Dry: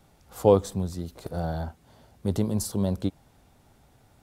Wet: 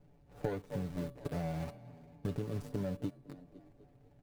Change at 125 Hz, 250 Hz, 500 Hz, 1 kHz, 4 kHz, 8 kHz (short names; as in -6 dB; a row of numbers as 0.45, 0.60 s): -9.5, -11.0, -15.0, -14.0, -14.0, -21.5 dB